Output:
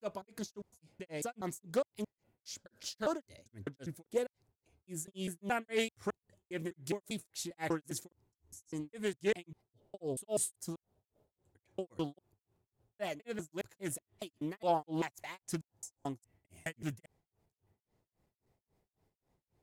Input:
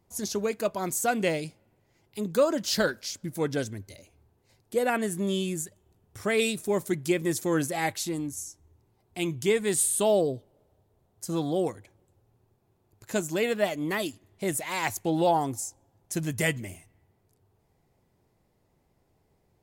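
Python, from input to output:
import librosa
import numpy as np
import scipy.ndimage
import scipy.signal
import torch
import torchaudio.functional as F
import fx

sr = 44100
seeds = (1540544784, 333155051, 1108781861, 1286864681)

y = fx.block_reorder(x, sr, ms=203.0, group=4)
y = fx.granulator(y, sr, seeds[0], grain_ms=253.0, per_s=3.7, spray_ms=21.0, spread_st=0)
y = fx.doppler_dist(y, sr, depth_ms=0.23)
y = F.gain(torch.from_numpy(y), -6.0).numpy()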